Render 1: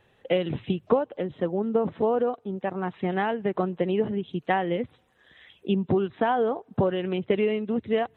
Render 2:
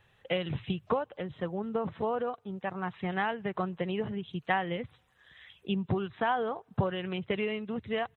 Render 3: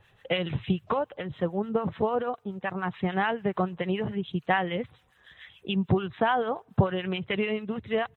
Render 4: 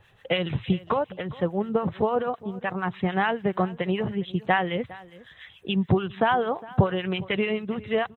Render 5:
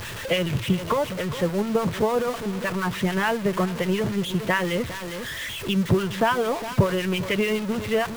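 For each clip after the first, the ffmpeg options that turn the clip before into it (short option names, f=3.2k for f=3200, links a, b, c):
-af "firequalizer=gain_entry='entry(120,0);entry(260,-11);entry(1100,-1)':delay=0.05:min_phase=1"
-filter_complex "[0:a]acrossover=split=1000[a][b];[a]aeval=exprs='val(0)*(1-0.7/2+0.7/2*cos(2*PI*6.9*n/s))':c=same[c];[b]aeval=exprs='val(0)*(1-0.7/2-0.7/2*cos(2*PI*6.9*n/s))':c=same[d];[c][d]amix=inputs=2:normalize=0,volume=7.5dB"
-af "aecho=1:1:408:0.1,volume=2.5dB"
-af "aeval=exprs='val(0)+0.5*0.0422*sgn(val(0))':c=same,acrusher=bits=8:dc=4:mix=0:aa=0.000001,asuperstop=centerf=770:order=4:qfactor=7.5"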